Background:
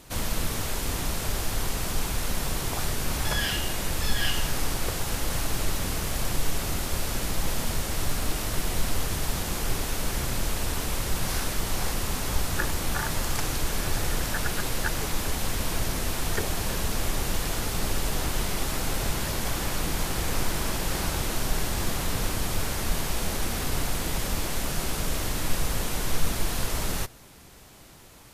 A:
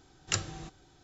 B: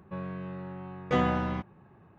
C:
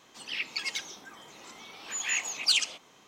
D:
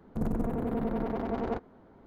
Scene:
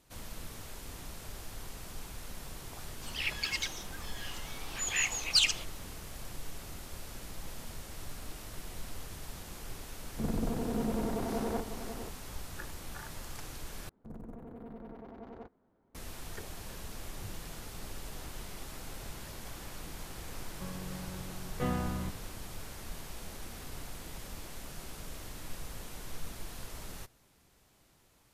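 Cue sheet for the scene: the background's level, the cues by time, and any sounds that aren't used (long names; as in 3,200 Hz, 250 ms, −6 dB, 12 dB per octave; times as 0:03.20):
background −16 dB
0:02.87: mix in C −1 dB
0:10.03: mix in D −3 dB + single-tap delay 546 ms −8.5 dB
0:13.89: overwrite with D −16 dB
0:16.89: mix in A −8.5 dB + inverse Chebyshev low-pass filter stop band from 670 Hz
0:20.49: mix in B −10 dB + low-shelf EQ 150 Hz +11 dB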